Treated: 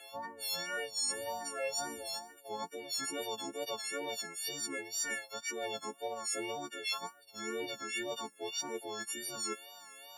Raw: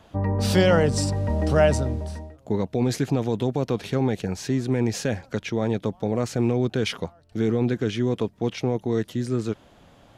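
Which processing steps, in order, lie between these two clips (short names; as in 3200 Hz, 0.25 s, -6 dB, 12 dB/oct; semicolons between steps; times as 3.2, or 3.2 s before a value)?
frequency quantiser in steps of 4 st; HPF 590 Hz 12 dB/oct; high shelf 6500 Hz +8 dB; reverse; compressor 8:1, threshold -32 dBFS, peak gain reduction 20.5 dB; reverse; short-mantissa float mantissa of 6-bit; wow and flutter 58 cents; endless phaser +2.5 Hz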